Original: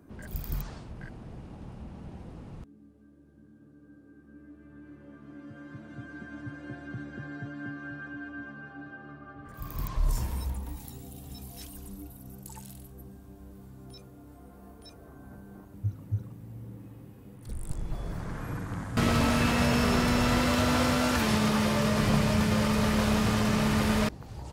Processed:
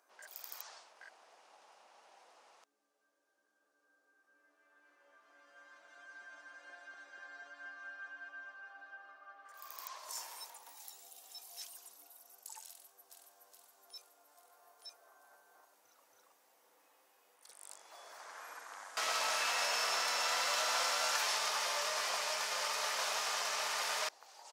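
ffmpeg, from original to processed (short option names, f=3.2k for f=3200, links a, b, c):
-filter_complex "[0:a]asplit=2[a][b];[b]afade=t=in:st=12.68:d=0.01,afade=t=out:st=13.12:d=0.01,aecho=0:1:420|840|1260|1680|2100|2520|2940|3360|3780|4200:0.707946|0.460165|0.299107|0.19442|0.126373|0.0821423|0.0533925|0.0347051|0.0225583|0.0146629[c];[a][c]amix=inputs=2:normalize=0,highpass=f=660:w=0.5412,highpass=f=660:w=1.3066,equalizer=f=5.9k:t=o:w=1:g=8,volume=-5.5dB"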